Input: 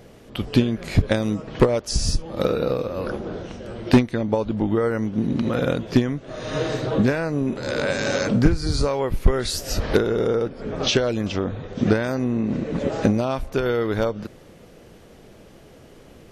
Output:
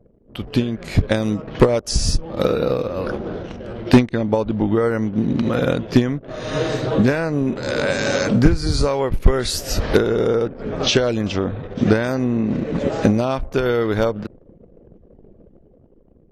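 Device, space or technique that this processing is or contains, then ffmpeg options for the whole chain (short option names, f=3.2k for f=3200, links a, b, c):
voice memo with heavy noise removal: -af "anlmdn=0.251,dynaudnorm=f=210:g=9:m=8.5dB,volume=-2dB"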